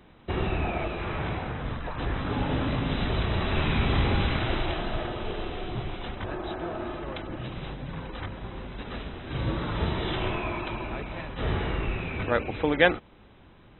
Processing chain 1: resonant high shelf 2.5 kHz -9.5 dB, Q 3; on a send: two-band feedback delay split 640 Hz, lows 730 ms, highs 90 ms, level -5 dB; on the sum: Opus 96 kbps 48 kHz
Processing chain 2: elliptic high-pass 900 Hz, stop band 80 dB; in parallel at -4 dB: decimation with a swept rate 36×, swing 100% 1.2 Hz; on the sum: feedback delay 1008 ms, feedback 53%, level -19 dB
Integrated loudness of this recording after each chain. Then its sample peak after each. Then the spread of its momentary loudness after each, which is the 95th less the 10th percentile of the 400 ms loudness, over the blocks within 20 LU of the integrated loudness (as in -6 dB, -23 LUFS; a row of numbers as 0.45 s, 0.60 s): -27.5 LUFS, -34.5 LUFS; -3.0 dBFS, -6.5 dBFS; 11 LU, 13 LU